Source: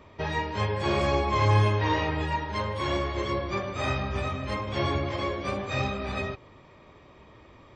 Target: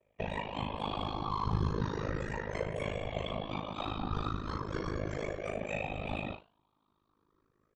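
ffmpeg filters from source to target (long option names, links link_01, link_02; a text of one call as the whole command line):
ffmpeg -i in.wav -filter_complex "[0:a]afftfilt=real='re*pow(10,15/40*sin(2*PI*(0.51*log(max(b,1)*sr/1024/100)/log(2)-(0.36)*(pts-256)/sr)))':imag='im*pow(10,15/40*sin(2*PI*(0.51*log(max(b,1)*sr/1024/100)/log(2)-(0.36)*(pts-256)/sr)))':win_size=1024:overlap=0.75,agate=range=-20dB:threshold=-40dB:ratio=16:detection=peak,equalizer=frequency=125:width_type=o:width=0.33:gain=-7,equalizer=frequency=2000:width_type=o:width=0.33:gain=-7,equalizer=frequency=5000:width_type=o:width=0.33:gain=-7,acontrast=43,alimiter=limit=-10.5dB:level=0:latency=1:release=198,acrossover=split=87|3600[link_01][link_02][link_03];[link_02]acompressor=threshold=-24dB:ratio=4[link_04];[link_03]acompressor=threshold=-45dB:ratio=4[link_05];[link_01][link_04][link_05]amix=inputs=3:normalize=0,aeval=exprs='0.224*(cos(1*acos(clip(val(0)/0.224,-1,1)))-cos(1*PI/2))+0.00178*(cos(2*acos(clip(val(0)/0.224,-1,1)))-cos(2*PI/2))':channel_layout=same,flanger=delay=4.1:depth=6.3:regen=86:speed=0.87:shape=triangular,afftfilt=real='hypot(re,im)*cos(2*PI*random(0))':imag='hypot(re,im)*sin(2*PI*random(1))':win_size=512:overlap=0.75,tremolo=f=52:d=0.919,asplit=2[link_06][link_07];[link_07]adelay=37,volume=-9dB[link_08];[link_06][link_08]amix=inputs=2:normalize=0,volume=3.5dB" out.wav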